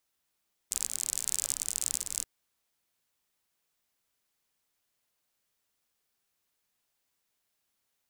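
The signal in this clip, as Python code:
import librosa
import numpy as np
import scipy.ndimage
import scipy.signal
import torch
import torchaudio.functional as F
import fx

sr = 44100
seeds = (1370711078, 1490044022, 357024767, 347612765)

y = fx.rain(sr, seeds[0], length_s=1.53, drops_per_s=47.0, hz=7700.0, bed_db=-19.5)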